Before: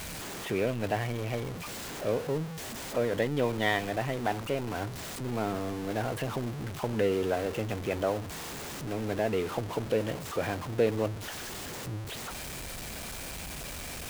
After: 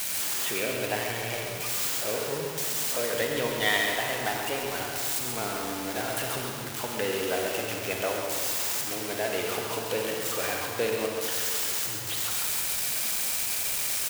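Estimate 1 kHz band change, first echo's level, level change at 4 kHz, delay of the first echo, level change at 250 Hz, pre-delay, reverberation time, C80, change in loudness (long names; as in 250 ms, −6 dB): +2.0 dB, −7.0 dB, +9.5 dB, 135 ms, −3.5 dB, 37 ms, 2.0 s, 1.5 dB, +5.0 dB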